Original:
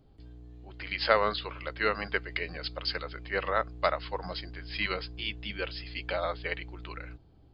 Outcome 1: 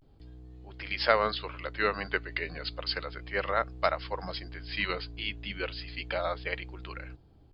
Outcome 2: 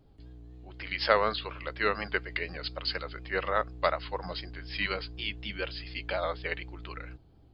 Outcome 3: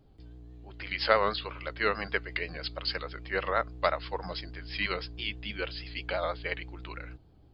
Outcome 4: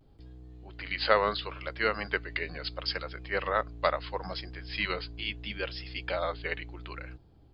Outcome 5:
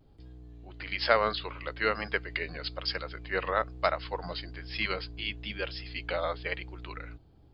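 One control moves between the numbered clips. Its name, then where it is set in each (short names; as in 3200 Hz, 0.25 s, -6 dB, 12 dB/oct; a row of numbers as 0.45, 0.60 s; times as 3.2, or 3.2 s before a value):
vibrato, rate: 0.33, 4.1, 6.2, 0.73, 1.1 Hz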